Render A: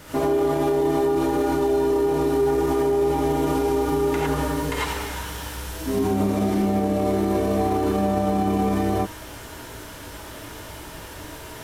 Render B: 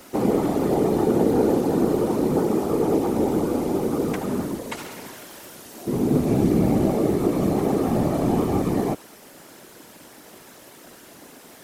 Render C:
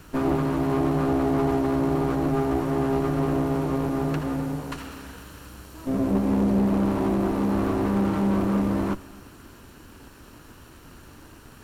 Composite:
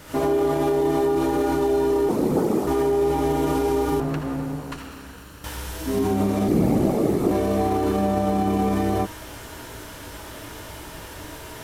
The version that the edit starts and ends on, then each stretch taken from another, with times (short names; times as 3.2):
A
2.09–2.67 from B
4–5.44 from C
6.48–7.31 from B